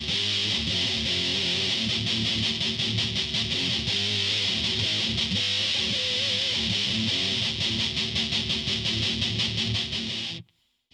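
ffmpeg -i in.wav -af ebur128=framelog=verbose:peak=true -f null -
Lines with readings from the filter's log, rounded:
Integrated loudness:
  I:         -24.0 LUFS
  Threshold: -34.1 LUFS
Loudness range:
  LRA:         1.5 LU
  Threshold: -43.9 LUFS
  LRA low:   -24.8 LUFS
  LRA high:  -23.3 LUFS
True peak:
  Peak:      -12.6 dBFS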